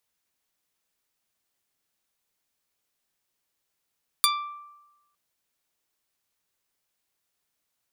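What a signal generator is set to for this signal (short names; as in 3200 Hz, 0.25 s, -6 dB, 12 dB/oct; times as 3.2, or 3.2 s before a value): plucked string D6, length 0.91 s, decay 1.04 s, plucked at 0.43, medium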